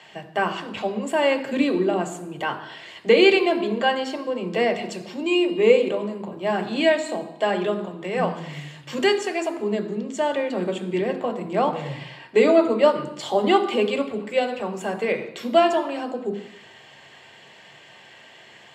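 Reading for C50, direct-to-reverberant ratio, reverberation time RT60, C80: 11.0 dB, 4.5 dB, 0.90 s, 13.0 dB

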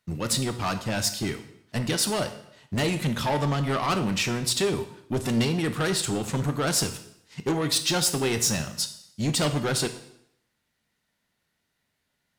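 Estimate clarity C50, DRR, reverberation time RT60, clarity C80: 11.5 dB, 8.0 dB, 0.75 s, 14.0 dB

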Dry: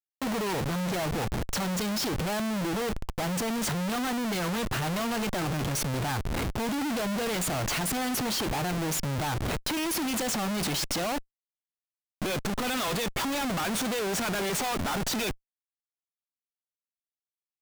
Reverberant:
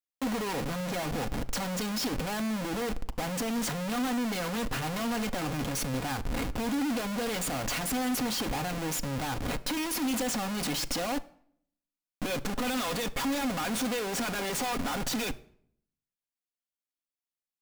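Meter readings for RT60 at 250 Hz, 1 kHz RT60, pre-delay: 0.85 s, 0.60 s, 4 ms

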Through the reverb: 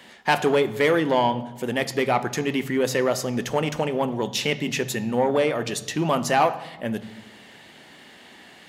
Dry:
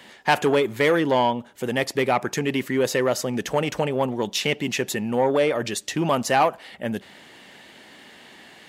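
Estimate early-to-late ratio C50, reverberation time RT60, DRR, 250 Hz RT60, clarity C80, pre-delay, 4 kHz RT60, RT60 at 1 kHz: 15.0 dB, 1.1 s, 11.0 dB, can't be measured, 17.0 dB, 3 ms, 0.75 s, 1.0 s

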